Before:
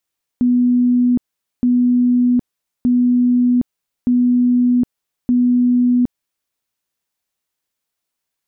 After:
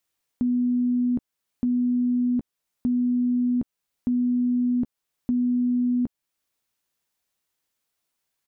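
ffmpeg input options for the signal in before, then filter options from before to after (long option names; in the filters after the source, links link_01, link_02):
-f lavfi -i "aevalsrc='0.299*sin(2*PI*246*mod(t,1.22))*lt(mod(t,1.22),188/246)':duration=6.1:sample_rate=44100"
-filter_complex "[0:a]alimiter=limit=-17.5dB:level=0:latency=1:release=400,asplit=2[link_01][link_02];[link_02]adelay=14,volume=-14dB[link_03];[link_01][link_03]amix=inputs=2:normalize=0"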